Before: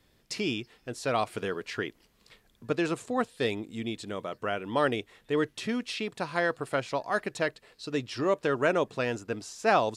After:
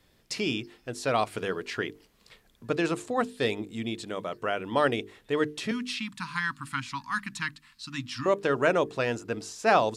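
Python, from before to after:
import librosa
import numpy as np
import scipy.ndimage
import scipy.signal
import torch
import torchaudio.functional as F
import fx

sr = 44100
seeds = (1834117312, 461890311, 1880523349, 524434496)

y = fx.ellip_bandstop(x, sr, low_hz=260.0, high_hz=1000.0, order=3, stop_db=40, at=(5.71, 8.26))
y = fx.hum_notches(y, sr, base_hz=50, count=9)
y = F.gain(torch.from_numpy(y), 2.0).numpy()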